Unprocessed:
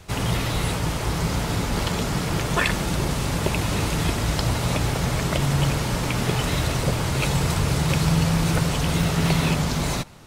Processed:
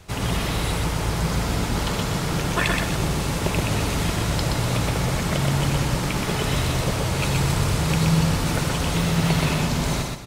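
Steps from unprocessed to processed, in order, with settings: feedback delay 124 ms, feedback 33%, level -3 dB; trim -1.5 dB

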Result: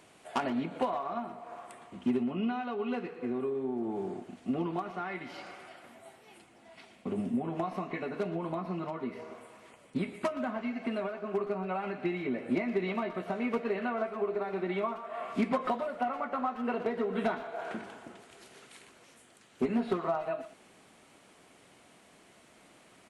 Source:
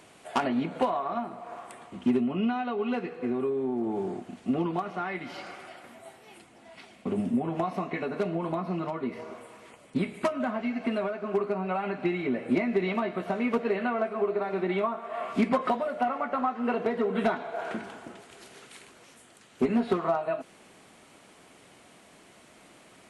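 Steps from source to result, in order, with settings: speakerphone echo 120 ms, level -12 dB; trim -4.5 dB

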